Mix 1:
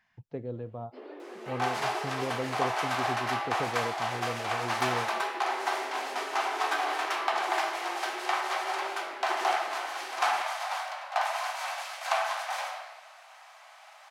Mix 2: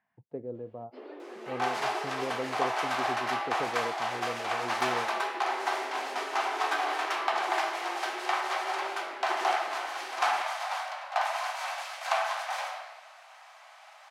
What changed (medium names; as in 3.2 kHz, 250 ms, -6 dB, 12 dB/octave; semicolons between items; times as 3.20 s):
speech: add band-pass filter 430 Hz, Q 0.78; second sound: add treble shelf 8.5 kHz -4.5 dB